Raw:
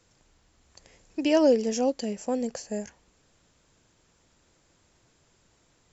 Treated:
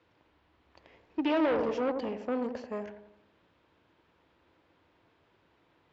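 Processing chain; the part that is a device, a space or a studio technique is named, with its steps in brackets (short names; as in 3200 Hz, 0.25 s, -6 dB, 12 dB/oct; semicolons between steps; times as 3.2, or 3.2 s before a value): analogue delay pedal into a guitar amplifier (analogue delay 87 ms, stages 1024, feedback 47%, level -9 dB; tube stage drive 27 dB, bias 0.55; speaker cabinet 87–3400 Hz, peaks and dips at 130 Hz -8 dB, 210 Hz -6 dB, 320 Hz +4 dB, 960 Hz +4 dB); gain +1.5 dB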